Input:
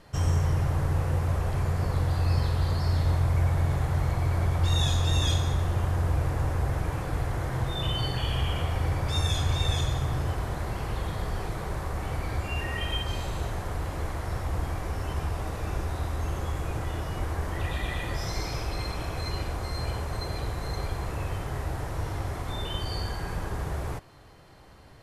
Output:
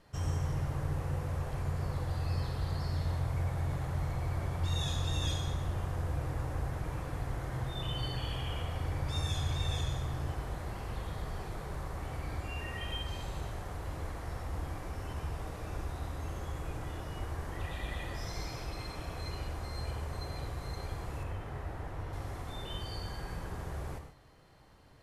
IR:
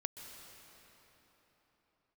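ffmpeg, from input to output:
-filter_complex "[0:a]asettb=1/sr,asplit=3[link_01][link_02][link_03];[link_01]atrim=end=21.234[link_04];[link_02]atrim=start=21.23:end=22.13,asetpts=PTS-STARTPTS,afade=type=in:duration=0.004:curve=qsin,afade=type=out:start_time=0.896:duration=0.004:curve=qsin,acrossover=split=3300[link_05][link_06];[link_06]acompressor=threshold=-59dB:ratio=4:attack=1:release=60[link_07];[link_05][link_07]amix=inputs=2:normalize=0[link_08];[link_03]atrim=start=22.126[link_09];[link_04][link_08]acrossfade=duration=0.004:curve1=hsin:curve2=qsin[link_10];[link_10][link_09]acrossfade=duration=0.004:curve1=qsin:curve2=hsin[link_11];[1:a]atrim=start_sample=2205,afade=type=out:start_time=0.36:duration=0.01,atrim=end_sample=16317,asetrate=88200,aresample=44100[link_12];[link_11][link_12]afir=irnorm=-1:irlink=0"

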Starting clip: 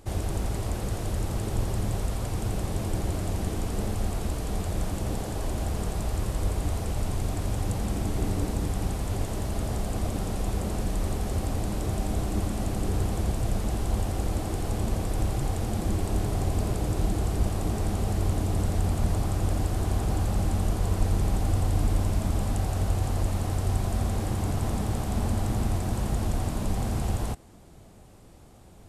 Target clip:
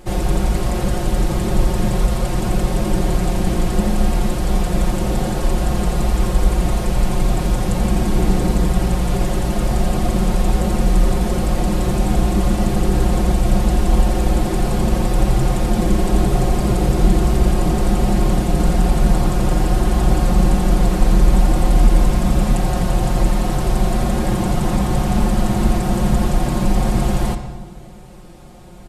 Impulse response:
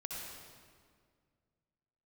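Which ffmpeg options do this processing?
-filter_complex "[0:a]aecho=1:1:5.6:0.96,asplit=2[link_01][link_02];[1:a]atrim=start_sample=2205,asetrate=66150,aresample=44100,lowpass=5700[link_03];[link_02][link_03]afir=irnorm=-1:irlink=0,volume=0dB[link_04];[link_01][link_04]amix=inputs=2:normalize=0,volume=5.5dB"

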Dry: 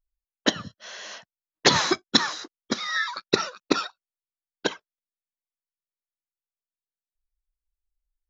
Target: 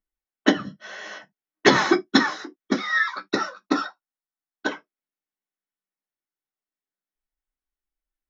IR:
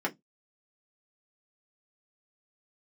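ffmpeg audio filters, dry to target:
-filter_complex "[0:a]asplit=3[link_01][link_02][link_03];[link_01]afade=type=out:start_time=3.22:duration=0.02[link_04];[link_02]equalizer=frequency=160:width_type=o:width=0.67:gain=-10,equalizer=frequency=400:width_type=o:width=0.67:gain=-10,equalizer=frequency=2500:width_type=o:width=0.67:gain=-8,afade=type=in:start_time=3.22:duration=0.02,afade=type=out:start_time=4.67:duration=0.02[link_05];[link_03]afade=type=in:start_time=4.67:duration=0.02[link_06];[link_04][link_05][link_06]amix=inputs=3:normalize=0[link_07];[1:a]atrim=start_sample=2205,atrim=end_sample=3969[link_08];[link_07][link_08]afir=irnorm=-1:irlink=0,volume=-4dB"

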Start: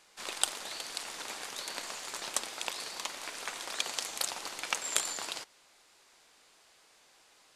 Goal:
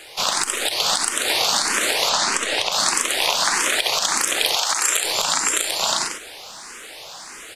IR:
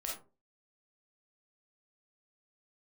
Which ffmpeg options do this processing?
-filter_complex "[0:a]aecho=1:1:64|249|521|609|645|741:0.335|0.596|0.355|0.473|0.596|0.299,acontrast=73,asettb=1/sr,asplit=3[link_01][link_02][link_03];[link_01]atrim=end=4.554[link_04];[link_02]atrim=start=4.55:end=5.04,asetpts=PTS-STARTPTS,afade=type=in:duration=0.004:curve=qsin,afade=type=out:start_time=0.486:duration=0.004:curve=qsin,highpass=450[link_05];[link_03]atrim=start=5.036[link_06];[link_04][link_05]acrossfade=duration=0.004:curve1=hsin:curve2=qsin[link_07];[link_07][link_06]acrossfade=duration=0.004:curve1=qsin:curve2=hsin,asplit=2[link_08][link_09];[1:a]atrim=start_sample=2205,atrim=end_sample=3528[link_10];[link_09][link_10]afir=irnorm=-1:irlink=0,volume=-13dB[link_11];[link_08][link_11]amix=inputs=2:normalize=0,acompressor=threshold=-29dB:ratio=6,asettb=1/sr,asplit=3[link_12][link_13][link_14];[link_12]atrim=end=2.094[link_15];[link_13]atrim=start=2.09:end=2.72,asetpts=PTS-STARTPTS,afade=type=in:duration=0.004:curve=qsin,afade=type=out:start_time=0.626:duration=0.004:curve=qsin,lowpass=7200[link_16];[link_14]atrim=start=2.716[link_17];[link_15][link_16]acrossfade=duration=0.004:curve1=hsin:curve2=qsin[link_18];[link_18][link_17]acrossfade=duration=0.004:curve1=qsin:curve2=hsin,alimiter=level_in=16.5dB:limit=-1dB:release=50:level=0:latency=1,asplit=2[link_19][link_20];[link_20]afreqshift=1.6[link_21];[link_19][link_21]amix=inputs=2:normalize=1"

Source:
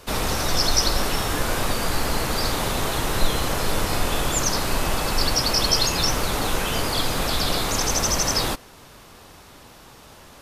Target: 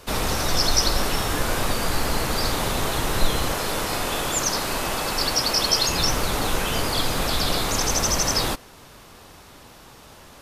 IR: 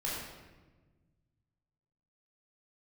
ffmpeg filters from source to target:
-filter_complex "[0:a]asettb=1/sr,asplit=3[link_01][link_02][link_03];[link_01]atrim=end=3.524[link_04];[link_02]atrim=start=3.52:end=5.89,asetpts=PTS-STARTPTS,afade=type=in:duration=0.004:curve=qsin,afade=type=out:start_time=2.366:duration=0.004:curve=qsin,lowshelf=frequency=150:gain=-9.5[link_05];[link_03]atrim=start=5.886[link_06];[link_04][link_05]acrossfade=duration=0.004:curve1=hsin:curve2=qsin[link_07];[link_07][link_06]acrossfade=duration=0.004:curve1=qsin:curve2=hsin"

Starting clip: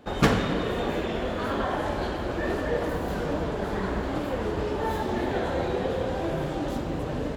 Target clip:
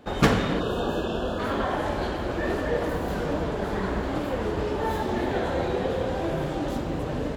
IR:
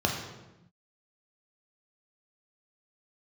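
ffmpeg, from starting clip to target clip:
-filter_complex "[0:a]asplit=3[link_01][link_02][link_03];[link_01]afade=type=out:start_time=0.59:duration=0.02[link_04];[link_02]asuperstop=centerf=2100:order=20:qfactor=2.7,afade=type=in:start_time=0.59:duration=0.02,afade=type=out:start_time=1.38:duration=0.02[link_05];[link_03]afade=type=in:start_time=1.38:duration=0.02[link_06];[link_04][link_05][link_06]amix=inputs=3:normalize=0,volume=1dB"

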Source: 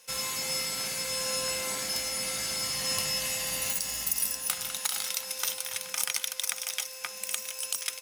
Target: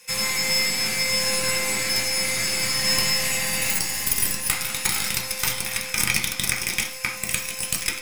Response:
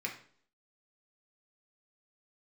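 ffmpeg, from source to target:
-filter_complex "[0:a]aeval=exprs='0.299*(cos(1*acos(clip(val(0)/0.299,-1,1)))-cos(1*PI/2))+0.0422*(cos(6*acos(clip(val(0)/0.299,-1,1)))-cos(6*PI/2))':channel_layout=same[link_01];[1:a]atrim=start_sample=2205,afade=type=out:start_time=0.23:duration=0.01,atrim=end_sample=10584[link_02];[link_01][link_02]afir=irnorm=-1:irlink=0,volume=7.5dB"

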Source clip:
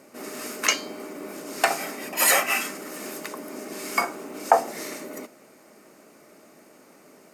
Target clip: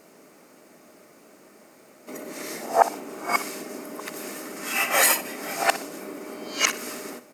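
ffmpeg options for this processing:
ffmpeg -i in.wav -af "areverse,aecho=1:1:61|122|183:0.178|0.0551|0.0171,acrusher=bits=10:mix=0:aa=0.000001" out.wav

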